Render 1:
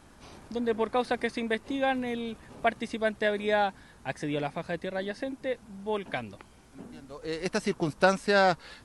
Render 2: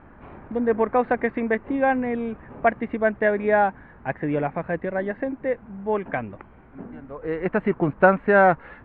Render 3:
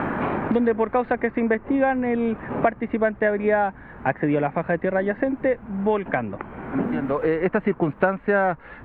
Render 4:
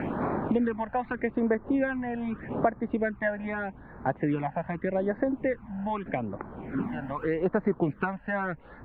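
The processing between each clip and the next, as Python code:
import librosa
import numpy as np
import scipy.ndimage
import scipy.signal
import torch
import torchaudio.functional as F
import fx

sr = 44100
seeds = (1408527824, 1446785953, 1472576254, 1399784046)

y1 = scipy.signal.sosfilt(scipy.signal.cheby2(4, 50, 5100.0, 'lowpass', fs=sr, output='sos'), x)
y1 = y1 * librosa.db_to_amplitude(7.0)
y2 = fx.band_squash(y1, sr, depth_pct=100)
y3 = fx.phaser_stages(y2, sr, stages=12, low_hz=370.0, high_hz=3000.0, hz=0.82, feedback_pct=5)
y3 = y3 * librosa.db_to_amplitude(-4.0)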